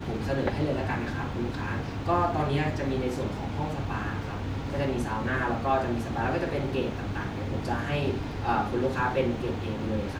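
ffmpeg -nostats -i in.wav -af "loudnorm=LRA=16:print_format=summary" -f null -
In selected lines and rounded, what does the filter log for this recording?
Input Integrated:    -29.4 LUFS
Input True Peak:     -12.8 dBTP
Input LRA:             0.5 LU
Input Threshold:     -39.4 LUFS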